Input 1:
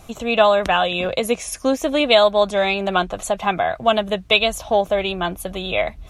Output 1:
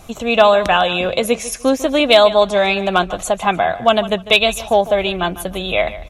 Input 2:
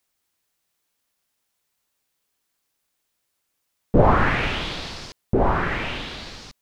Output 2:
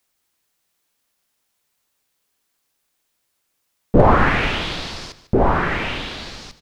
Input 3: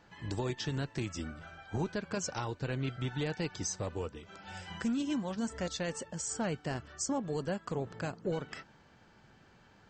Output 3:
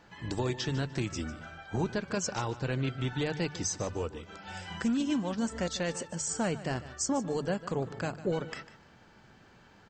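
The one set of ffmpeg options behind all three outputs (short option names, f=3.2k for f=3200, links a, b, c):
-af "bandreject=f=50:t=h:w=6,bandreject=f=100:t=h:w=6,bandreject=f=150:t=h:w=6,aecho=1:1:149|298:0.168|0.0369,volume=4.5dB,asoftclip=hard,volume=-4.5dB,volume=3.5dB"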